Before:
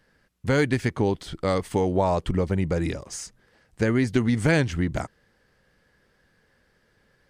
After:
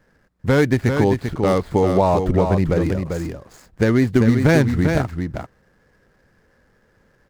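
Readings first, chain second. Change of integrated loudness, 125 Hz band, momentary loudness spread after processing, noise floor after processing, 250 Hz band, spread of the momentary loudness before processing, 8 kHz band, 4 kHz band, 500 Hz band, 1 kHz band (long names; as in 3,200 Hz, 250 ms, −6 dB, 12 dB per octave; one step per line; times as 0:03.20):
+6.5 dB, +7.0 dB, 12 LU, −60 dBFS, +7.0 dB, 12 LU, 0.0 dB, +2.0 dB, +7.0 dB, +6.5 dB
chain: running median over 15 samples
single-tap delay 394 ms −6 dB
level +6 dB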